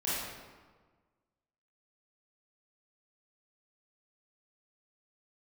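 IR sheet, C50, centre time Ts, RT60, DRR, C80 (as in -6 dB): -3.0 dB, 105 ms, 1.5 s, -10.5 dB, 0.0 dB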